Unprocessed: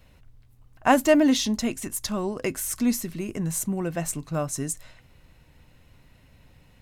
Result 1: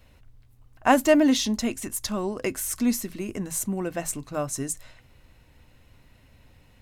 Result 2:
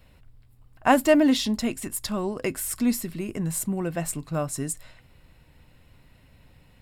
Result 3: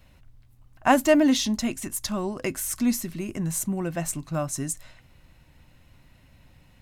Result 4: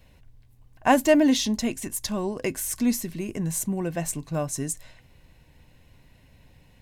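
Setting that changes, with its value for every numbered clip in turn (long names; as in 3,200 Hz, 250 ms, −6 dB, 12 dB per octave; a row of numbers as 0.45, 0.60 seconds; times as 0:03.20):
notch filter, centre frequency: 160, 6,200, 450, 1,300 Hertz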